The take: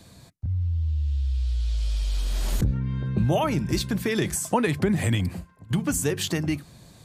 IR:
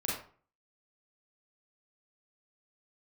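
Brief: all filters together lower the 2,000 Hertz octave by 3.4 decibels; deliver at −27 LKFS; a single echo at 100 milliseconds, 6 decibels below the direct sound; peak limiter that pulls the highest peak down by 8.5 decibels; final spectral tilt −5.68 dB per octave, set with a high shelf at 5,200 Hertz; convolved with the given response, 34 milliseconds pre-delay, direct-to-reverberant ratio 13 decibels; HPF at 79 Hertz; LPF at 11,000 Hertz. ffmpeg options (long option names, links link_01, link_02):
-filter_complex "[0:a]highpass=79,lowpass=11000,equalizer=frequency=2000:width_type=o:gain=-3.5,highshelf=frequency=5200:gain=-4.5,alimiter=limit=-18.5dB:level=0:latency=1,aecho=1:1:100:0.501,asplit=2[link_01][link_02];[1:a]atrim=start_sample=2205,adelay=34[link_03];[link_02][link_03]afir=irnorm=-1:irlink=0,volume=-18dB[link_04];[link_01][link_04]amix=inputs=2:normalize=0,volume=1.5dB"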